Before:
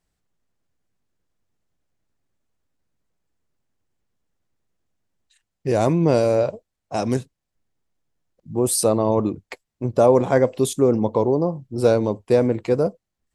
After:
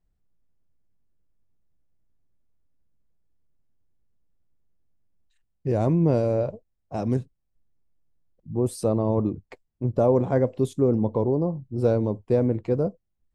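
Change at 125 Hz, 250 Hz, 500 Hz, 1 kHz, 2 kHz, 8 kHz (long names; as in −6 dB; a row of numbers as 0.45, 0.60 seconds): +0.5, −2.5, −5.5, −7.5, −11.0, −17.5 decibels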